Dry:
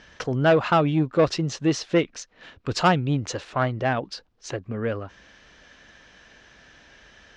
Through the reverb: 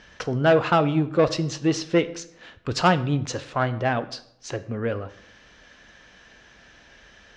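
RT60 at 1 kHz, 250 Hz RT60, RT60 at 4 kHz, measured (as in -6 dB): 0.65 s, 0.85 s, 0.50 s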